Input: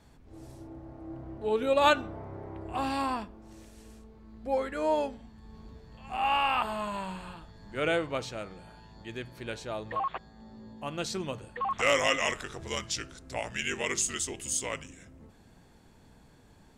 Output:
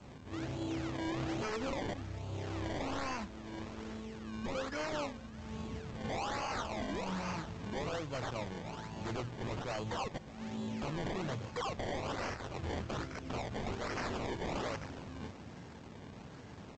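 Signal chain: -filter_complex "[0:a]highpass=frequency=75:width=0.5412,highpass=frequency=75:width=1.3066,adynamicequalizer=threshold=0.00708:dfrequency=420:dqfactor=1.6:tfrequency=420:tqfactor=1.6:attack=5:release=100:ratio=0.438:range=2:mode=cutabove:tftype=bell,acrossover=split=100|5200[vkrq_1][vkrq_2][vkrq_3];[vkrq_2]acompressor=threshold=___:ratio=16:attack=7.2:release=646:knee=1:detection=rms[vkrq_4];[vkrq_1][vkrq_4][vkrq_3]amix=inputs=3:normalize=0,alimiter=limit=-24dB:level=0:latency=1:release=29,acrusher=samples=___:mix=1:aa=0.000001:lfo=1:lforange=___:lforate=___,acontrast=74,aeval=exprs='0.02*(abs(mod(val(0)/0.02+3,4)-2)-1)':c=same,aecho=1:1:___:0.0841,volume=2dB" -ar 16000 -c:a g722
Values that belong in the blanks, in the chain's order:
-36dB, 23, 23, 1.2, 609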